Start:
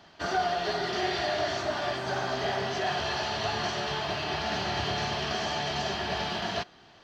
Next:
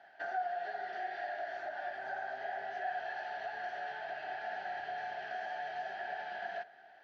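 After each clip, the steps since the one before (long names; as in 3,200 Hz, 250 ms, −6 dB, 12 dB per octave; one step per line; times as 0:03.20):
downward compressor, threshold −35 dBFS, peak gain reduction 11.5 dB
pair of resonant band-passes 1,100 Hz, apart 1.1 octaves
on a send at −15.5 dB: convolution reverb RT60 1.4 s, pre-delay 6 ms
on the sum: level +4 dB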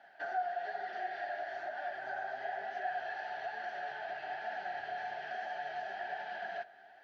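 flanger 1.1 Hz, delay 3.3 ms, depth 7.2 ms, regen −40%
level +4 dB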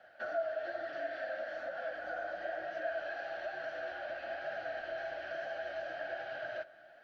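frequency shifter −72 Hz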